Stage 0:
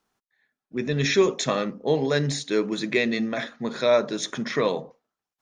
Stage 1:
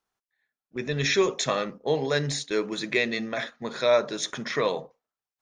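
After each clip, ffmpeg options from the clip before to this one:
ffmpeg -i in.wav -af "agate=range=-7dB:threshold=-35dB:ratio=16:detection=peak,equalizer=frequency=230:width=0.95:gain=-7" out.wav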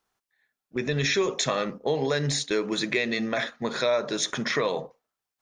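ffmpeg -i in.wav -filter_complex "[0:a]asplit=2[link_01][link_02];[link_02]alimiter=limit=-20.5dB:level=0:latency=1:release=92,volume=-1.5dB[link_03];[link_01][link_03]amix=inputs=2:normalize=0,acompressor=threshold=-23dB:ratio=2.5" out.wav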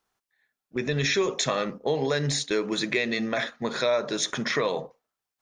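ffmpeg -i in.wav -af anull out.wav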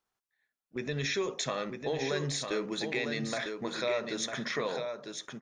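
ffmpeg -i in.wav -af "aecho=1:1:951:0.501,volume=-7.5dB" out.wav

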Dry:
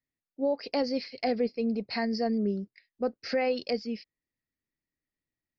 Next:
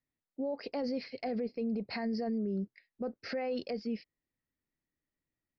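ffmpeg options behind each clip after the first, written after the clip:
ffmpeg -i in.wav -af "lowpass=frequency=1700:poles=1,alimiter=level_in=5.5dB:limit=-24dB:level=0:latency=1:release=42,volume=-5.5dB,volume=2dB" out.wav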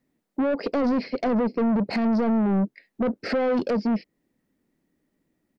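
ffmpeg -i in.wav -filter_complex "[0:a]firequalizer=gain_entry='entry(110,0);entry(190,13);entry(1100,2);entry(3800,-2)':delay=0.05:min_phase=1,asplit=2[link_01][link_02];[link_02]acompressor=threshold=-32dB:ratio=6,volume=-1dB[link_03];[link_01][link_03]amix=inputs=2:normalize=0,asoftclip=type=tanh:threshold=-25dB,volume=5.5dB" out.wav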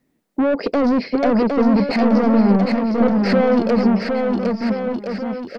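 ffmpeg -i in.wav -af "aecho=1:1:760|1368|1854|2244|2555:0.631|0.398|0.251|0.158|0.1,volume=6dB" out.wav

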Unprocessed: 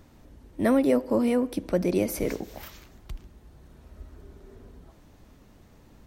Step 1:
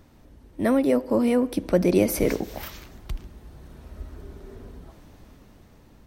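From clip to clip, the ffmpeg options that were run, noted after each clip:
ffmpeg -i in.wav -af "dynaudnorm=framelen=430:gausssize=7:maxgain=6.5dB,equalizer=frequency=7000:width=5.4:gain=-3" out.wav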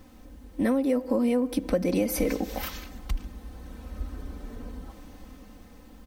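ffmpeg -i in.wav -af "aecho=1:1:3.9:0.95,acompressor=threshold=-22dB:ratio=5,acrusher=bits=10:mix=0:aa=0.000001" out.wav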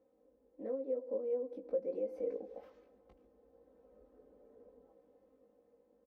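ffmpeg -i in.wav -filter_complex "[0:a]bandpass=frequency=490:width_type=q:width=5.1:csg=0,asplit=2[link_01][link_02];[link_02]adelay=19,volume=-4.5dB[link_03];[link_01][link_03]amix=inputs=2:normalize=0,volume=-8dB" out.wav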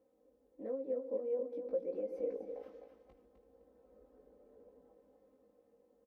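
ffmpeg -i in.wav -af "aecho=1:1:256|512|768|1024:0.398|0.119|0.0358|0.0107,volume=-1dB" out.wav

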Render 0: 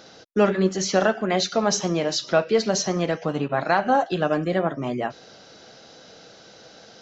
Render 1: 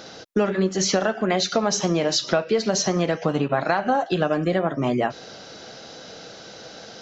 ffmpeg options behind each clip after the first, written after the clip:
ffmpeg -i in.wav -af "acompressor=threshold=-24dB:ratio=6,volume=6.5dB" out.wav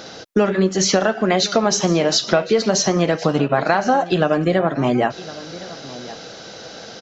ffmpeg -i in.wav -af "aecho=1:1:1063:0.126,volume=4.5dB" out.wav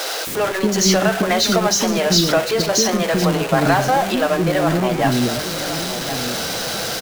ffmpeg -i in.wav -filter_complex "[0:a]aeval=exprs='val(0)+0.5*0.126*sgn(val(0))':channel_layout=same,acrossover=split=410[link_01][link_02];[link_01]adelay=270[link_03];[link_03][link_02]amix=inputs=2:normalize=0,volume=-1dB" out.wav

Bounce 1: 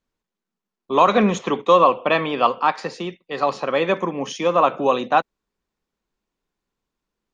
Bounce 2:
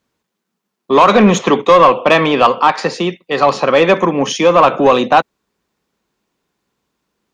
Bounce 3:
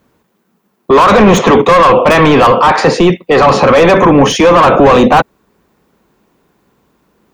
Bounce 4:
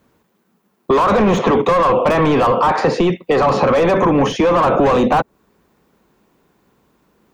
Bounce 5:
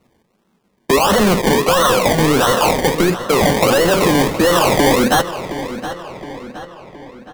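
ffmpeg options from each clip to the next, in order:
ffmpeg -i in.wav -filter_complex "[0:a]highpass=82,asplit=2[link_01][link_02];[link_02]alimiter=limit=-10dB:level=0:latency=1:release=82,volume=3dB[link_03];[link_01][link_03]amix=inputs=2:normalize=0,acontrast=28,volume=-1dB" out.wav
ffmpeg -i in.wav -af "apsyclip=18.5dB,equalizer=frequency=5200:width_type=o:width=2.8:gain=-10.5,volume=-1dB" out.wav
ffmpeg -i in.wav -filter_complex "[0:a]acrossover=split=1300|5500[link_01][link_02][link_03];[link_01]acompressor=threshold=-9dB:ratio=4[link_04];[link_02]acompressor=threshold=-25dB:ratio=4[link_05];[link_03]acompressor=threshold=-41dB:ratio=4[link_06];[link_04][link_05][link_06]amix=inputs=3:normalize=0,volume=-3dB" out.wav
ffmpeg -i in.wav -filter_complex "[0:a]acrusher=samples=26:mix=1:aa=0.000001:lfo=1:lforange=15.6:lforate=1.5,asplit=2[link_01][link_02];[link_02]adelay=718,lowpass=frequency=4800:poles=1,volume=-12dB,asplit=2[link_03][link_04];[link_04]adelay=718,lowpass=frequency=4800:poles=1,volume=0.51,asplit=2[link_05][link_06];[link_06]adelay=718,lowpass=frequency=4800:poles=1,volume=0.51,asplit=2[link_07][link_08];[link_08]adelay=718,lowpass=frequency=4800:poles=1,volume=0.51,asplit=2[link_09][link_10];[link_10]adelay=718,lowpass=frequency=4800:poles=1,volume=0.51[link_11];[link_01][link_03][link_05][link_07][link_09][link_11]amix=inputs=6:normalize=0" out.wav

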